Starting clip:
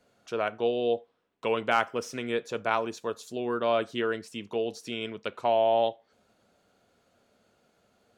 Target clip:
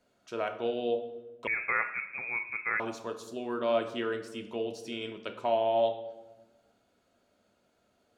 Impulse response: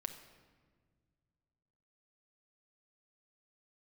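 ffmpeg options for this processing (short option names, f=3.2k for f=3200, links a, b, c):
-filter_complex "[1:a]atrim=start_sample=2205,asetrate=79380,aresample=44100[a];[0:a][a]afir=irnorm=-1:irlink=0,asettb=1/sr,asplit=3[b][c][d];[b]atrim=end=1.474[e];[c]atrim=start=1.47:end=2.8,asetpts=PTS-STARTPTS,afade=t=in:d=0.004:c=qsin,afade=t=out:st=1.326:d=0.004:c=qsin,lowpass=f=2.3k:t=q:w=0.5098,lowpass=f=2.3k:t=q:w=0.6013,lowpass=f=2.3k:t=q:w=0.9,lowpass=f=2.3k:t=q:w=2.563,afreqshift=-2700[f];[d]atrim=start=2.796[g];[e][f]acrossfade=d=0.004:c1=hsin:c2=qsin[h];[h][g]acrossfade=d=0.004:c1=qsin:c2=hsin,volume=3dB"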